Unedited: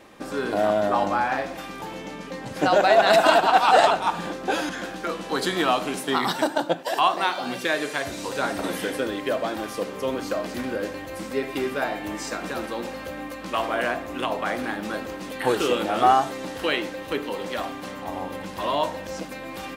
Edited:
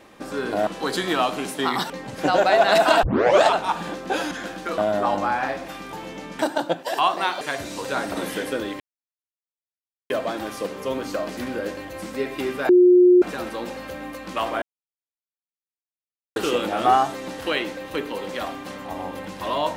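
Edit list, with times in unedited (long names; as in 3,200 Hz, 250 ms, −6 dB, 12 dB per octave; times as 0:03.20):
0:00.67–0:02.28: swap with 0:05.16–0:06.39
0:03.41: tape start 0.41 s
0:07.41–0:07.88: remove
0:09.27: splice in silence 1.30 s
0:11.86–0:12.39: beep over 359 Hz −9.5 dBFS
0:13.79–0:15.53: silence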